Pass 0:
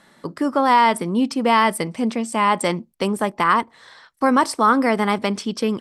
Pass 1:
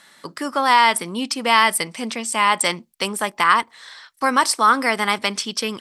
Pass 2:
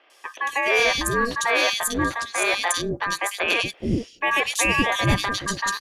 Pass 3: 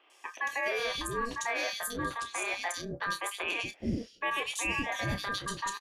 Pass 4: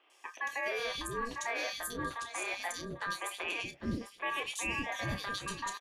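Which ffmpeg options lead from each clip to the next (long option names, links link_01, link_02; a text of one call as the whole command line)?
ffmpeg -i in.wav -af "tiltshelf=frequency=970:gain=-8.5" out.wav
ffmpeg -i in.wav -filter_complex "[0:a]lowshelf=frequency=420:gain=7,aeval=exprs='val(0)*sin(2*PI*1400*n/s)':channel_layout=same,acrossover=split=410|2900[link_01][link_02][link_03];[link_03]adelay=100[link_04];[link_01]adelay=420[link_05];[link_05][link_02][link_04]amix=inputs=3:normalize=0" out.wav
ffmpeg -i in.wav -filter_complex "[0:a]afftfilt=real='re*pow(10,6/40*sin(2*PI*(0.66*log(max(b,1)*sr/1024/100)/log(2)-(-0.89)*(pts-256)/sr)))':imag='im*pow(10,6/40*sin(2*PI*(0.66*log(max(b,1)*sr/1024/100)/log(2)-(-0.89)*(pts-256)/sr)))':win_size=1024:overlap=0.75,alimiter=limit=-15.5dB:level=0:latency=1:release=446,asplit=2[link_01][link_02];[link_02]adelay=30,volume=-10dB[link_03];[link_01][link_03]amix=inputs=2:normalize=0,volume=-7dB" out.wav
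ffmpeg -i in.wav -af "aecho=1:1:798:0.188,volume=-3.5dB" out.wav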